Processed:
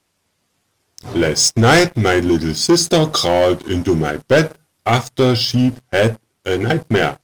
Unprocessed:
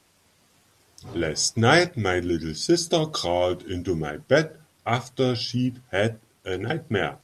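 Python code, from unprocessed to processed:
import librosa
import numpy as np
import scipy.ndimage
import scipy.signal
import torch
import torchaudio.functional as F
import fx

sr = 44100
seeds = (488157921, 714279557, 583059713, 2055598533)

y = fx.high_shelf(x, sr, hz=6900.0, db=5.5, at=(4.44, 5.0))
y = fx.leveller(y, sr, passes=3)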